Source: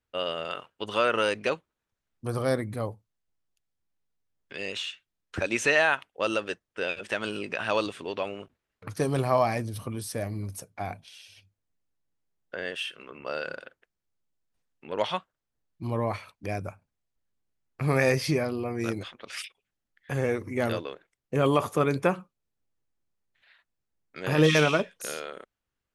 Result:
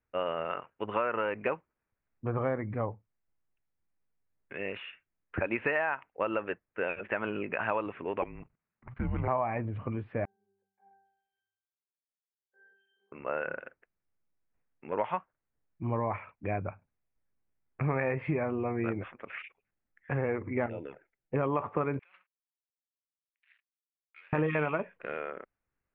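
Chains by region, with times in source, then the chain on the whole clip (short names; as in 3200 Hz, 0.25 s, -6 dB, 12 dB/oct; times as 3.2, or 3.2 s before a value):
8.22–9.28 frequency shift -230 Hz + level quantiser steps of 15 dB
10.25–13.12 compressor 1.5:1, threshold -52 dBFS + Bessel high-pass 490 Hz, order 4 + octave resonator G, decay 0.77 s
20.66–21.34 envelope flanger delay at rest 7.8 ms, full sweep at -26.5 dBFS + compressor 2.5:1, threshold -35 dBFS + Butterworth band-stop 1100 Hz, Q 4.2
21.99–24.33 negative-ratio compressor -35 dBFS + sample leveller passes 5 + ladder band-pass 6000 Hz, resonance 40%
whole clip: dynamic EQ 920 Hz, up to +6 dB, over -42 dBFS, Q 2.3; steep low-pass 2500 Hz 48 dB/oct; compressor 6:1, threshold -26 dBFS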